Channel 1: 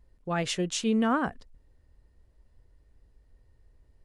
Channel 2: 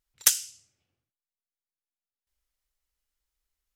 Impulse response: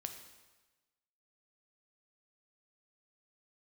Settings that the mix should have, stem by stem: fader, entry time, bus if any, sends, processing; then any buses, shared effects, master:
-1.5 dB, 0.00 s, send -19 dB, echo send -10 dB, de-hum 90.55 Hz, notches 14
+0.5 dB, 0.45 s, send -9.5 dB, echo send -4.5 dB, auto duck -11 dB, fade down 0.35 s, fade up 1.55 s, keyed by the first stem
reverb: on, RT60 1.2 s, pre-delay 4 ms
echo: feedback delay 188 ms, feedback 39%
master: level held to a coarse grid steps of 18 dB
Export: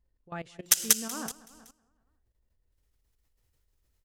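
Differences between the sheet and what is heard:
stem 1 -1.5 dB -> -8.5 dB; stem 2 +0.5 dB -> +6.5 dB

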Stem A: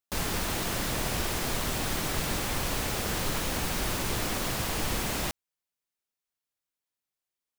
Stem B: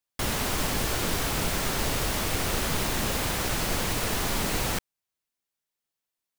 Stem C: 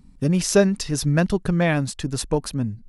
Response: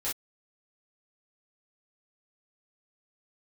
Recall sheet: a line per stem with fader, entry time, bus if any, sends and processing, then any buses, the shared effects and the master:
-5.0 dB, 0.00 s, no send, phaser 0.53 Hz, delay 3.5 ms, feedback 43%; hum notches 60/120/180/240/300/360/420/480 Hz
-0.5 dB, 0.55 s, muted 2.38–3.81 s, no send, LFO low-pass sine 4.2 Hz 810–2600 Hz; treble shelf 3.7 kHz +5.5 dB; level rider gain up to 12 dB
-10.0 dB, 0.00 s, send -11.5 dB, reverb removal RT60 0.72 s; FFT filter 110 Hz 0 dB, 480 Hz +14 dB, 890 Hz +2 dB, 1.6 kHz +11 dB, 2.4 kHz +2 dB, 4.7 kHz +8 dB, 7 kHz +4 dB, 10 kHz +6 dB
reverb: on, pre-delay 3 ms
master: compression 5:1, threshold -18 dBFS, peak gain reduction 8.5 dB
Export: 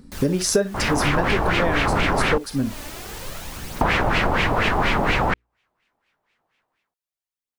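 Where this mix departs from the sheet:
stem B -0.5 dB -> +8.0 dB; stem C -10.0 dB -> 0.0 dB

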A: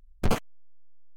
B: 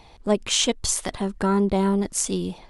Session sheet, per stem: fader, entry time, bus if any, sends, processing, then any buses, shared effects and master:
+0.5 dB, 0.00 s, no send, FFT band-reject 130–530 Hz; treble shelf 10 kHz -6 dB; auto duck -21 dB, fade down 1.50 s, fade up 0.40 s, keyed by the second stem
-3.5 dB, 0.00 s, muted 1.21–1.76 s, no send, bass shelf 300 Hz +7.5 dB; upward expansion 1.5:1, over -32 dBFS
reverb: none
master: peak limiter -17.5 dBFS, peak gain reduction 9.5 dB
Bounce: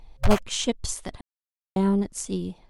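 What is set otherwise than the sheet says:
stem A +0.5 dB -> +8.0 dB; master: missing peak limiter -17.5 dBFS, peak gain reduction 9.5 dB

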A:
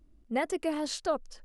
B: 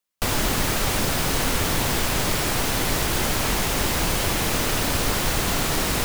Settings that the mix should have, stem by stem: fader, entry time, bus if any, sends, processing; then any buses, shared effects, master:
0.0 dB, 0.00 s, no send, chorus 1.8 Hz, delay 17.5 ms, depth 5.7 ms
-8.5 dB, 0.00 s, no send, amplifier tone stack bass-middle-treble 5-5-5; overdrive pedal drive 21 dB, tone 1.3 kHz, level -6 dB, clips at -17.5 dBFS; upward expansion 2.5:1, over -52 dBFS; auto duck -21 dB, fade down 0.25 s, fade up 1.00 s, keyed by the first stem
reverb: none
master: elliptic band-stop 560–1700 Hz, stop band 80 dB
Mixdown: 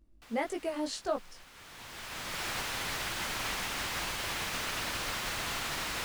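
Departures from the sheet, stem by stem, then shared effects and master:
stem B -8.5 dB -> +0.5 dB; master: missing elliptic band-stop 560–1700 Hz, stop band 80 dB

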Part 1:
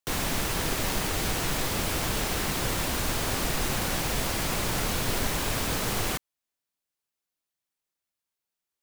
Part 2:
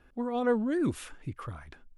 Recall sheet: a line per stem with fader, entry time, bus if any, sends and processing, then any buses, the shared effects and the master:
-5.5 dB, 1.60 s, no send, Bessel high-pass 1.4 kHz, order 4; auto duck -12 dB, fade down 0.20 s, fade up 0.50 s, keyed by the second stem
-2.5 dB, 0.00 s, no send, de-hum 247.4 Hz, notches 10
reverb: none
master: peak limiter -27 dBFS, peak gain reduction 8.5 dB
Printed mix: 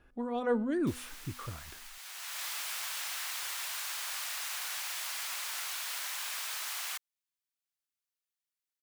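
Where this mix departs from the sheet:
stem 1: entry 1.60 s -> 0.80 s; master: missing peak limiter -27 dBFS, peak gain reduction 8.5 dB

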